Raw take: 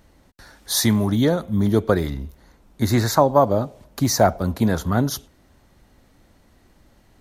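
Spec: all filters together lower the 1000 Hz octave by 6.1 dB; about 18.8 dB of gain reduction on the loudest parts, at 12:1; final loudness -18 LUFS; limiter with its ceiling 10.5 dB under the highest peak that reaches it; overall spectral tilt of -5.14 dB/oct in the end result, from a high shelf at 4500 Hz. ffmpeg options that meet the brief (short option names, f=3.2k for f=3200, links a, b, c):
-af "equalizer=f=1k:t=o:g=-8.5,highshelf=f=4.5k:g=-5.5,acompressor=threshold=-33dB:ratio=12,volume=24dB,alimiter=limit=-7.5dB:level=0:latency=1"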